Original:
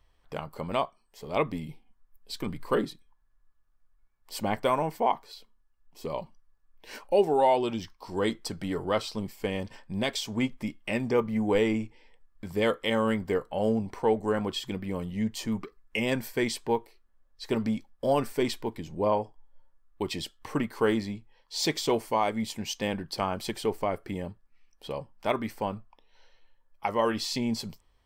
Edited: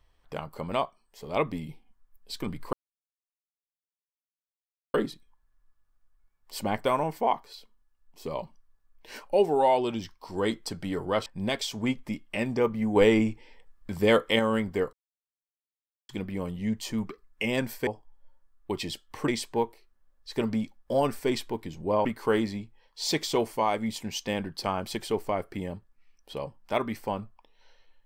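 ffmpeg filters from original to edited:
-filter_complex "[0:a]asplit=10[a][b][c][d][e][f][g][h][i][j];[a]atrim=end=2.73,asetpts=PTS-STARTPTS,afade=t=out:st=2.726:d=0.004:c=hsin,apad=pad_dur=2.21[k];[b]atrim=start=2.73:end=9.052,asetpts=PTS-STARTPTS,afade=t=in:d=0.004:c=hsin[l];[c]atrim=start=9.798:end=11.502[m];[d]atrim=start=11.498:end=12.932,asetpts=PTS-STARTPTS,volume=4.5dB[n];[e]atrim=start=12.928:end=13.47,asetpts=PTS-STARTPTS,afade=t=out:st=0.538:d=0.004:c=hsin[o];[f]atrim=start=13.47:end=14.63,asetpts=PTS-STARTPTS,volume=0[p];[g]atrim=start=14.63:end=16.412,asetpts=PTS-STARTPTS,afade=t=in:d=0.004:c=hsin[q];[h]atrim=start=19.178:end=20.592[r];[i]atrim=start=16.408:end=19.182[s];[j]atrim=start=20.588[t];[k][l]concat=n=2:v=0:a=1[u];[u][m]acrossfade=d=0.004:c1=hsin:c2=hsin[v];[v][n]acrossfade=d=0.004:c1=hsin:c2=hsin[w];[o][p][q]concat=n=3:v=0:a=1[x];[w][x]acrossfade=d=0.004:c1=hsin:c2=hsin[y];[y][r]acrossfade=d=0.004:c1=hsin:c2=hsin[z];[z][s]acrossfade=d=0.004:c1=hsin:c2=hsin[aa];[aa][t]acrossfade=d=0.004:c1=hsin:c2=hsin"

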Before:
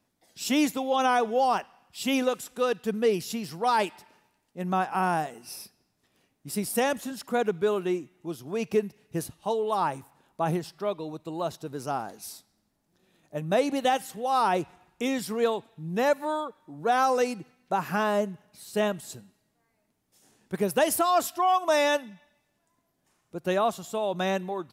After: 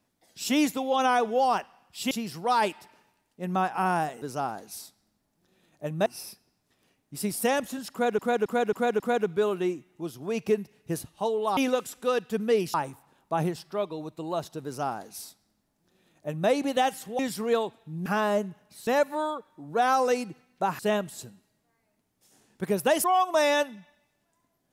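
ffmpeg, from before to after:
-filter_complex "[0:a]asplit=15[a][b][c][d][e][f][g][h][i][j][k][l][m][n][o];[a]atrim=end=2.112[p];[b]atrim=start=3.278:end=5.392[q];[c]atrim=start=11.728:end=13.572[r];[d]atrim=start=5.388:end=7.522[s];[e]atrim=start=7.248:end=7.522[t];[f]atrim=start=7.248:end=7.522[u];[g]atrim=start=7.248:end=7.522[v];[h]atrim=start=7.248:end=9.822[w];[i]atrim=start=2.108:end=3.282[x];[j]atrim=start=9.818:end=14.272[y];[k]atrim=start=15.098:end=15.972[z];[l]atrim=start=17.888:end=18.702[aa];[m]atrim=start=15.968:end=17.892[ab];[n]atrim=start=18.698:end=20.952[ac];[o]atrim=start=21.378[ad];[p][q]acrossfade=d=0.004:c1=hsin:c2=hsin[ae];[ae][r]acrossfade=d=0.004:c1=hsin:c2=hsin[af];[af][s]acrossfade=d=0.004:c1=hsin:c2=hsin[ag];[ag][t]acrossfade=d=0.004:c1=hsin:c2=hsin[ah];[ah][u]acrossfade=d=0.004:c1=hsin:c2=hsin[ai];[ai][v]acrossfade=d=0.004:c1=hsin:c2=hsin[aj];[aj][w]acrossfade=d=0.004:c1=hsin:c2=hsin[ak];[ak][x]acrossfade=d=0.004:c1=hsin:c2=hsin[al];[al][y]acrossfade=d=0.004:c1=hsin:c2=hsin[am];[am][z]acrossfade=d=0.004:c1=hsin:c2=hsin[an];[an][aa]acrossfade=d=0.004:c1=hsin:c2=hsin[ao];[ao][ab]acrossfade=d=0.004:c1=hsin:c2=hsin[ap];[ap][ac]acrossfade=d=0.004:c1=hsin:c2=hsin[aq];[aq][ad]acrossfade=d=0.004:c1=hsin:c2=hsin"

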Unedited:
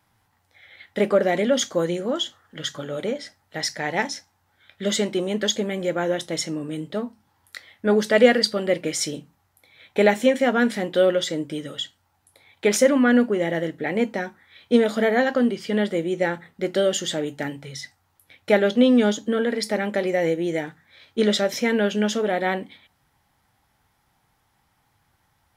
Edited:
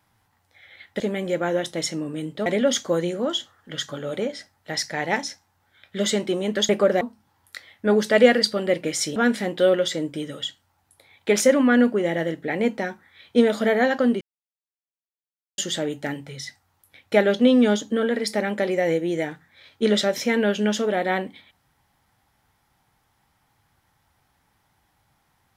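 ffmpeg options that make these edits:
-filter_complex "[0:a]asplit=8[a][b][c][d][e][f][g][h];[a]atrim=end=1.002[i];[b]atrim=start=5.548:end=7.012[j];[c]atrim=start=1.318:end=5.552[k];[d]atrim=start=0.998:end=1.322[l];[e]atrim=start=7.008:end=9.162[m];[f]atrim=start=10.518:end=15.57,asetpts=PTS-STARTPTS,afade=t=out:st=5.048:d=0.004:c=hsin[n];[g]atrim=start=15.57:end=16.94,asetpts=PTS-STARTPTS,volume=0[o];[h]atrim=start=16.94,asetpts=PTS-STARTPTS,afade=t=in:d=0.004:c=hsin[p];[i][j]acrossfade=d=0.004:c1=hsin:c2=hsin[q];[q][k]acrossfade=d=0.004:c1=hsin:c2=hsin[r];[r][l]acrossfade=d=0.004:c1=hsin:c2=hsin[s];[s][m]acrossfade=d=0.004:c1=hsin:c2=hsin[t];[n][o][p]concat=n=3:v=0:a=1[u];[t][u]acrossfade=d=0.004:c1=hsin:c2=hsin"

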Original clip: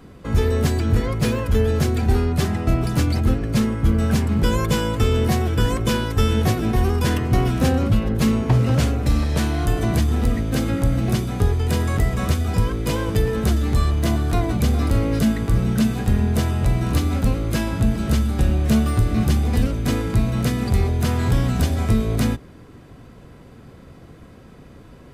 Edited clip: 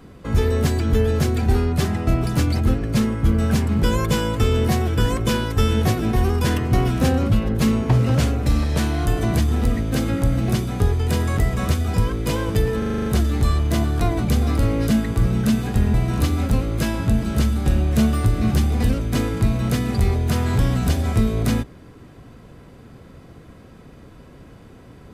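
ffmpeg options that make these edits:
-filter_complex "[0:a]asplit=10[a][b][c][d][e][f][g][h][i][j];[a]atrim=end=0.932[k];[b]atrim=start=1.528:end=13.422[l];[c]atrim=start=13.378:end=13.422[m];[d]atrim=start=13.378:end=13.422[n];[e]atrim=start=13.378:end=13.422[o];[f]atrim=start=13.378:end=13.422[p];[g]atrim=start=13.378:end=13.422[q];[h]atrim=start=13.378:end=13.422[r];[i]atrim=start=13.378:end=16.262[s];[j]atrim=start=16.668[t];[k][l]acrossfade=d=0.004:c1=hsin:c2=hsin[u];[u][m]acrossfade=d=0.004:c1=hsin:c2=hsin[v];[v][n]acrossfade=d=0.004:c1=hsin:c2=hsin[w];[w][o]acrossfade=d=0.004:c1=hsin:c2=hsin[x];[x][p]acrossfade=d=0.004:c1=hsin:c2=hsin[y];[y][q]acrossfade=d=0.004:c1=hsin:c2=hsin[z];[z][r]acrossfade=d=0.004:c1=hsin:c2=hsin[aa];[aa][s]acrossfade=d=0.004:c1=hsin:c2=hsin[ab];[ab][t]acrossfade=d=0.004:c1=hsin:c2=hsin"

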